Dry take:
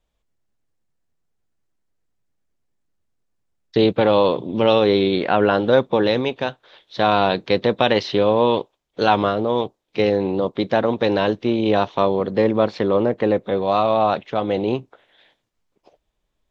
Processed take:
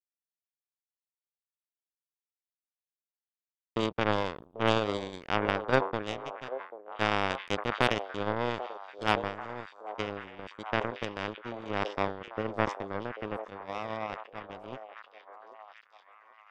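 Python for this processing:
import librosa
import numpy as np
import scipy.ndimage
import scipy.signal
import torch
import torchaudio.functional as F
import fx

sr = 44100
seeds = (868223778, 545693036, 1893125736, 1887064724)

p1 = fx.power_curve(x, sr, exponent=3.0)
p2 = fx.notch(p1, sr, hz=4100.0, q=6.0)
p3 = np.clip(p2, -10.0 ** (-7.0 / 20.0), 10.0 ** (-7.0 / 20.0))
p4 = fx.high_shelf(p3, sr, hz=5200.0, db=-10.0)
p5 = p4 + fx.echo_stepped(p4, sr, ms=789, hz=570.0, octaves=0.7, feedback_pct=70, wet_db=-9.0, dry=0)
y = fx.sustainer(p5, sr, db_per_s=130.0)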